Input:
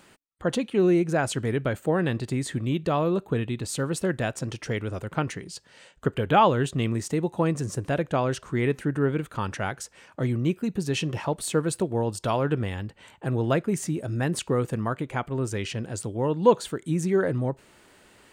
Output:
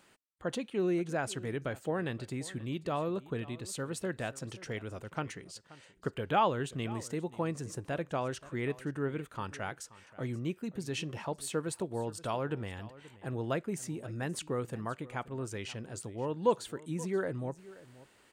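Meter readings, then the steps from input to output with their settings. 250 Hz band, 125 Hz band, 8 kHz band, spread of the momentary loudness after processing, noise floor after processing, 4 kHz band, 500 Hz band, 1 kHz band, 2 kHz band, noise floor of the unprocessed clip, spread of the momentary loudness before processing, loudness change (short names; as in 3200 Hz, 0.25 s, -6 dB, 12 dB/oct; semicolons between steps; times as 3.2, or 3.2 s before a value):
-10.5 dB, -11.5 dB, -8.0 dB, 10 LU, -64 dBFS, -8.0 dB, -9.5 dB, -8.5 dB, -8.0 dB, -56 dBFS, 10 LU, -9.5 dB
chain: low shelf 320 Hz -4 dB; echo 0.529 s -19 dB; gain -8 dB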